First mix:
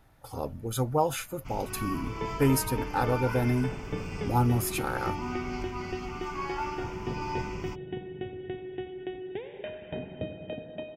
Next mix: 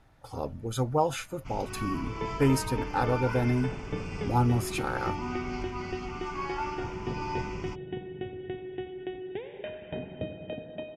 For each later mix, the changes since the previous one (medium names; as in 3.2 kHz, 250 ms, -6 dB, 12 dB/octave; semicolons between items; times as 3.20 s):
master: add low-pass 7.8 kHz 12 dB/octave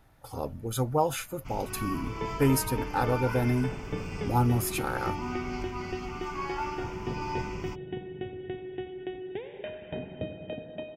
master: remove low-pass 7.8 kHz 12 dB/octave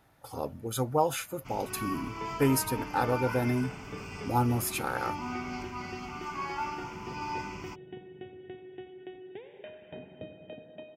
second sound -7.0 dB; master: add high-pass 150 Hz 6 dB/octave